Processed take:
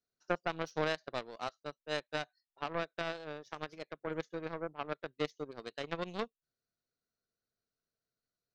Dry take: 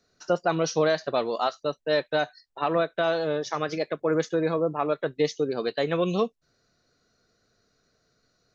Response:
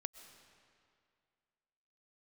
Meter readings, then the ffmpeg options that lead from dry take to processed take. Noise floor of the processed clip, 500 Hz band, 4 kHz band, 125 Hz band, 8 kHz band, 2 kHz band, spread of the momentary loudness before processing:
below −85 dBFS, −15.0 dB, −9.5 dB, −13.0 dB, can't be measured, −8.5 dB, 5 LU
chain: -af "aeval=exprs='0.282*(cos(1*acos(clip(val(0)/0.282,-1,1)))-cos(1*PI/2))+0.0794*(cos(3*acos(clip(val(0)/0.282,-1,1)))-cos(3*PI/2))+0.00355*(cos(4*acos(clip(val(0)/0.282,-1,1)))-cos(4*PI/2))+0.00224*(cos(6*acos(clip(val(0)/0.282,-1,1)))-cos(6*PI/2))+0.00178*(cos(7*acos(clip(val(0)/0.282,-1,1)))-cos(7*PI/2))':channel_layout=same,volume=-6dB"

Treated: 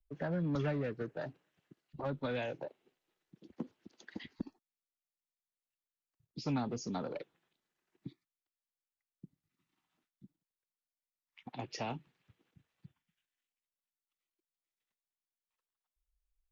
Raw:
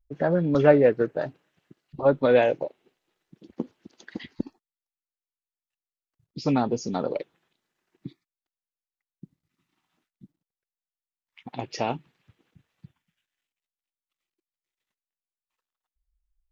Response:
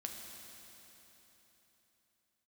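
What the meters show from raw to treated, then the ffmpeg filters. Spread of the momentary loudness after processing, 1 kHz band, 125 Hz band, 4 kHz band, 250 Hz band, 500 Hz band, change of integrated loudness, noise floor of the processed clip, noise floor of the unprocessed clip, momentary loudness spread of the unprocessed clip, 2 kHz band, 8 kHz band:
19 LU, −13.5 dB, −8.5 dB, −8.0 dB, −12.0 dB, −18.5 dB, −15.5 dB, below −85 dBFS, below −85 dBFS, 19 LU, −12.5 dB, can't be measured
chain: -filter_complex "[0:a]acrossover=split=230|3000[link_01][link_02][link_03];[link_02]acompressor=threshold=-24dB:ratio=6[link_04];[link_01][link_04][link_03]amix=inputs=3:normalize=0,acrossover=split=280|730|1300[link_05][link_06][link_07][link_08];[link_06]asoftclip=type=tanh:threshold=-34.5dB[link_09];[link_05][link_09][link_07][link_08]amix=inputs=4:normalize=0,volume=-7.5dB"

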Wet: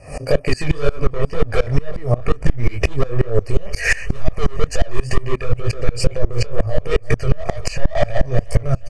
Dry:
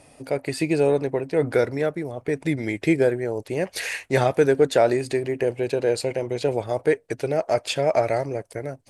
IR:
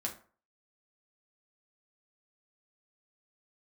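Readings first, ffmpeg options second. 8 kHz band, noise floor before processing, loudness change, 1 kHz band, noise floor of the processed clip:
+3.5 dB, −55 dBFS, +1.0 dB, −1.0 dB, −33 dBFS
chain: -filter_complex "[0:a]asuperstop=centerf=3600:order=12:qfactor=2.5,asoftclip=type=hard:threshold=-23.5dB,lowpass=7400,lowshelf=frequency=96:gain=12,acompressor=threshold=-34dB:ratio=6,asplit=2[link_01][link_02];[link_02]aecho=0:1:352|704|1056|1408:0.075|0.045|0.027|0.0162[link_03];[link_01][link_03]amix=inputs=2:normalize=0,aphaser=in_gain=1:out_gain=1:delay=1.3:decay=0.28:speed=0.31:type=triangular,asubboost=boost=7.5:cutoff=66,flanger=delay=17.5:depth=7.7:speed=2.1,aecho=1:1:1.7:0.6,alimiter=level_in=26.5dB:limit=-1dB:release=50:level=0:latency=1,aeval=exprs='val(0)*pow(10,-24*if(lt(mod(-5.6*n/s,1),2*abs(-5.6)/1000),1-mod(-5.6*n/s,1)/(2*abs(-5.6)/1000),(mod(-5.6*n/s,1)-2*abs(-5.6)/1000)/(1-2*abs(-5.6)/1000))/20)':channel_layout=same"

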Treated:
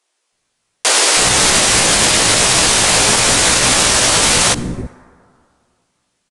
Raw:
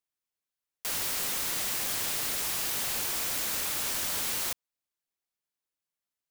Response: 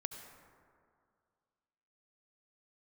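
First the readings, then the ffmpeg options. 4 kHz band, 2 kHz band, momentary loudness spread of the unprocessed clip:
+22.0 dB, +22.5 dB, 2 LU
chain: -filter_complex "[0:a]acrossover=split=750[link_01][link_02];[link_01]acontrast=36[link_03];[link_03][link_02]amix=inputs=2:normalize=0,aresample=22050,aresample=44100,flanger=delay=16:depth=2.6:speed=0.9,acrossover=split=330[link_04][link_05];[link_04]adelay=320[link_06];[link_06][link_05]amix=inputs=2:normalize=0,asplit=2[link_07][link_08];[1:a]atrim=start_sample=2205,lowshelf=frequency=150:gain=-8.5[link_09];[link_08][link_09]afir=irnorm=-1:irlink=0,volume=-10.5dB[link_10];[link_07][link_10]amix=inputs=2:normalize=0,alimiter=level_in=26.5dB:limit=-1dB:release=50:level=0:latency=1,volume=-1dB"

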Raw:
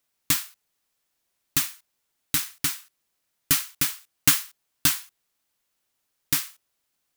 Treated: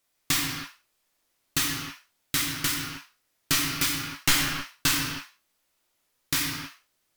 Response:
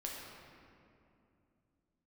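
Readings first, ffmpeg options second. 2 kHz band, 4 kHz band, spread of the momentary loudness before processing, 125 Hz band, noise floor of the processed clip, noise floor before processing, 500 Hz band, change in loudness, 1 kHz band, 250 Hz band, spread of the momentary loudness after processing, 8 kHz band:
+4.0 dB, +2.5 dB, 12 LU, +2.5 dB, −74 dBFS, −77 dBFS, +6.0 dB, −2.0 dB, +4.5 dB, +4.0 dB, 14 LU, −1.5 dB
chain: -filter_complex "[0:a]aeval=exprs='clip(val(0),-1,0.188)':channel_layout=same,acrossover=split=6600[link_01][link_02];[link_02]acompressor=threshold=-25dB:ratio=4:attack=1:release=60[link_03];[link_01][link_03]amix=inputs=2:normalize=0[link_04];[1:a]atrim=start_sample=2205,afade=type=out:start_time=0.41:duration=0.01,atrim=end_sample=18522,asetrate=48510,aresample=44100[link_05];[link_04][link_05]afir=irnorm=-1:irlink=0,volume=6dB" -ar 48000 -c:a libvorbis -b:a 192k

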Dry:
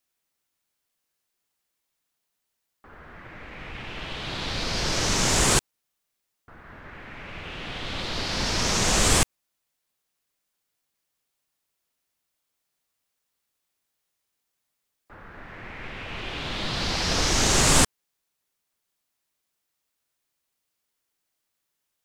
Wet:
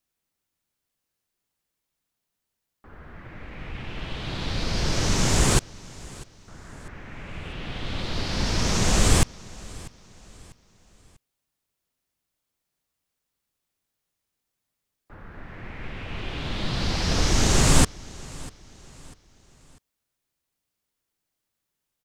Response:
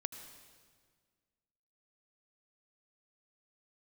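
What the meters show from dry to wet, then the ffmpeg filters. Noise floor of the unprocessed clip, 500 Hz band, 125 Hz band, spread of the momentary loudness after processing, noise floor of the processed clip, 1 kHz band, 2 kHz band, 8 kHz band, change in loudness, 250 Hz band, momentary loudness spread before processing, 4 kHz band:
−80 dBFS, 0.0 dB, +5.0 dB, 22 LU, −83 dBFS, −2.0 dB, −2.5 dB, −3.0 dB, −1.0 dB, +3.0 dB, 21 LU, −3.0 dB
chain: -filter_complex "[0:a]lowshelf=frequency=320:gain=9,asplit=2[link_01][link_02];[link_02]aecho=0:1:645|1290|1935:0.0891|0.0348|0.0136[link_03];[link_01][link_03]amix=inputs=2:normalize=0,volume=-3dB"

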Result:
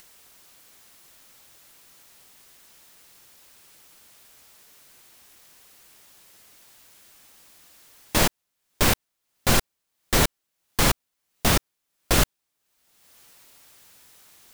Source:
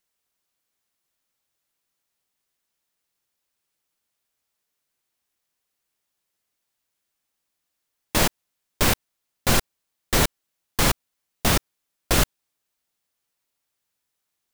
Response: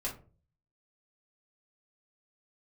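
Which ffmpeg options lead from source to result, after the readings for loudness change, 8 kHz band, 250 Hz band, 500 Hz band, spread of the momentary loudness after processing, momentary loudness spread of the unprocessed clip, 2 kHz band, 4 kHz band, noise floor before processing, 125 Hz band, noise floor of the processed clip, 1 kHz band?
0.0 dB, 0.0 dB, 0.0 dB, 0.0 dB, 6 LU, 6 LU, 0.0 dB, 0.0 dB, −80 dBFS, 0.0 dB, −80 dBFS, 0.0 dB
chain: -af "acompressor=mode=upward:threshold=-32dB:ratio=2.5"

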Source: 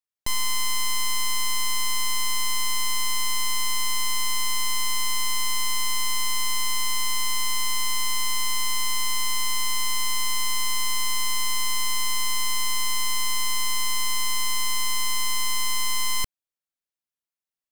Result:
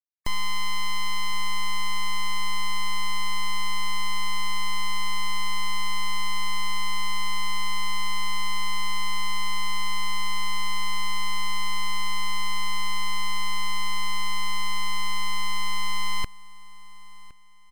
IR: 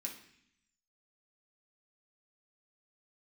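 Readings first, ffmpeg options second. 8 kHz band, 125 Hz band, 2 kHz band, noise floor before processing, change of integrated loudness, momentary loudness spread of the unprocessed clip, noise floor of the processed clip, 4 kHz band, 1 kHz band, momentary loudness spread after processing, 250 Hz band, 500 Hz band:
−12.0 dB, can't be measured, −0.5 dB, below −85 dBFS, −4.5 dB, 0 LU, −38 dBFS, −4.0 dB, +1.5 dB, 0 LU, +4.5 dB, −2.0 dB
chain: -filter_complex "[0:a]acrossover=split=3100[link_01][link_02];[link_02]acompressor=threshold=-34dB:ratio=4:attack=1:release=60[link_03];[link_01][link_03]amix=inputs=2:normalize=0,highshelf=frequency=9500:gain=5.5,afftfilt=real='re*gte(hypot(re,im),0.00708)':imag='im*gte(hypot(re,im),0.00708)':win_size=1024:overlap=0.75,volume=23.5dB,asoftclip=hard,volume=-23.5dB,asplit=2[link_04][link_05];[link_05]aecho=0:1:1063|2126|3189:0.0891|0.0303|0.0103[link_06];[link_04][link_06]amix=inputs=2:normalize=0,volume=4dB"

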